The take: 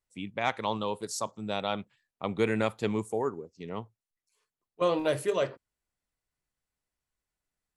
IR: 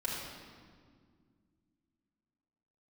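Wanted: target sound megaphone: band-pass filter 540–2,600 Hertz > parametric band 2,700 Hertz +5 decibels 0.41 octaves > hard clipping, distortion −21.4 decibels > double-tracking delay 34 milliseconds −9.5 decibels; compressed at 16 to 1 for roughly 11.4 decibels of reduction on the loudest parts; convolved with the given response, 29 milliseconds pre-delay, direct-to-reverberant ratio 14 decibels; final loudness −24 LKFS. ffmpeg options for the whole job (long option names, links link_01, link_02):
-filter_complex "[0:a]acompressor=threshold=-33dB:ratio=16,asplit=2[link_01][link_02];[1:a]atrim=start_sample=2205,adelay=29[link_03];[link_02][link_03]afir=irnorm=-1:irlink=0,volume=-18.5dB[link_04];[link_01][link_04]amix=inputs=2:normalize=0,highpass=540,lowpass=2600,equalizer=frequency=2700:width_type=o:width=0.41:gain=5,asoftclip=type=hard:threshold=-29.5dB,asplit=2[link_05][link_06];[link_06]adelay=34,volume=-9.5dB[link_07];[link_05][link_07]amix=inputs=2:normalize=0,volume=19dB"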